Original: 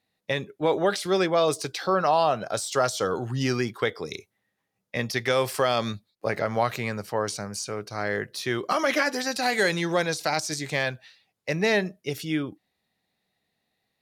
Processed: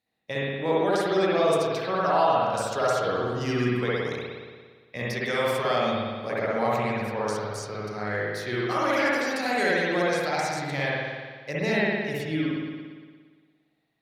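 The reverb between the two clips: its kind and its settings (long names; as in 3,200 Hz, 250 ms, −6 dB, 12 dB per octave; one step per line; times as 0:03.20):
spring reverb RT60 1.6 s, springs 57 ms, chirp 60 ms, DRR −6.5 dB
level −7 dB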